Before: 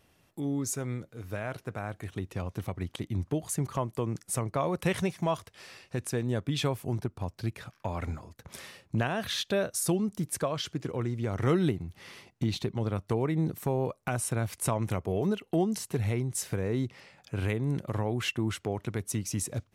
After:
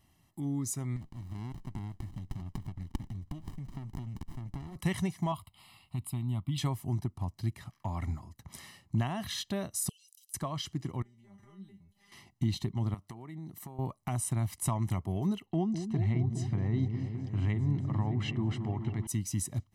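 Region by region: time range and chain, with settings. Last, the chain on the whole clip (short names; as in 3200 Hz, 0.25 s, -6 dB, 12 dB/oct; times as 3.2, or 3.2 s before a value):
0.96–4.76 band shelf 5400 Hz +9.5 dB 2.9 oct + compressor, threshold -37 dBFS + running maximum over 65 samples
5.32–6.58 high shelf 12000 Hz +5.5 dB + fixed phaser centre 1700 Hz, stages 6
9.89–10.34 steep high-pass 2600 Hz 72 dB/oct + high shelf 4000 Hz +9 dB + compressor, threshold -54 dBFS
11.02–12.12 compressor 5:1, threshold -36 dBFS + resonator 200 Hz, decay 0.23 s, mix 100%
12.94–13.79 HPF 230 Hz 6 dB/oct + compressor 3:1, threshold -40 dBFS
15.46–19.07 air absorption 140 m + repeats that get brighter 0.206 s, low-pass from 400 Hz, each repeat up 1 oct, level -6 dB
whole clip: bell 1700 Hz -4.5 dB 2.7 oct; notch 450 Hz, Q 12; comb 1 ms, depth 74%; gain -3.5 dB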